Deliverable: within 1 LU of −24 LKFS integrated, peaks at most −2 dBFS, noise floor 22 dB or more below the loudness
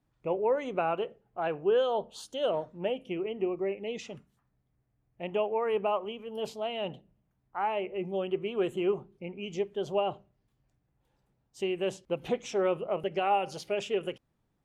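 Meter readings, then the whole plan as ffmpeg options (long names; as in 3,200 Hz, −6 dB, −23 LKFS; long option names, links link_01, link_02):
integrated loudness −32.0 LKFS; sample peak −16.0 dBFS; target loudness −24.0 LKFS
→ -af "volume=8dB"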